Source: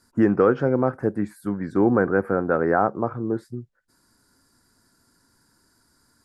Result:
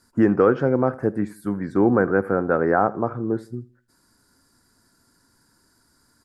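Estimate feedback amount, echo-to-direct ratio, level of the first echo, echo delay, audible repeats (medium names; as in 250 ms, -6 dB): 34%, -20.0 dB, -20.5 dB, 81 ms, 2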